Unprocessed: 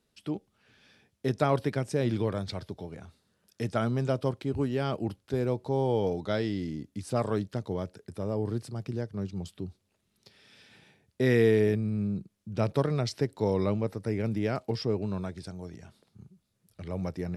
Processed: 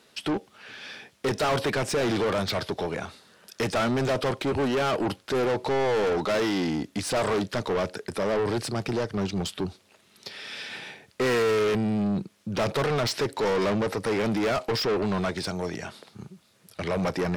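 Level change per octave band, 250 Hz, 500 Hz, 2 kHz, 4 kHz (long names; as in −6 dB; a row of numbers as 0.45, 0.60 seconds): +3.0, +4.0, +9.5, +11.5 decibels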